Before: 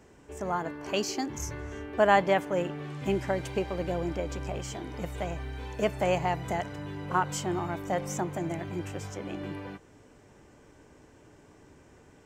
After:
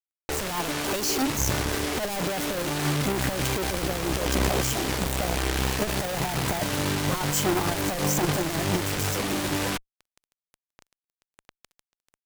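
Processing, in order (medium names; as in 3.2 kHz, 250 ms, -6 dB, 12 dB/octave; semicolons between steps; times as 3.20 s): fuzz box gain 47 dB, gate -46 dBFS; Chebyshev shaper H 2 -19 dB, 3 -11 dB, 4 -9 dB, 6 -7 dB, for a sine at -10 dBFS; trim -4 dB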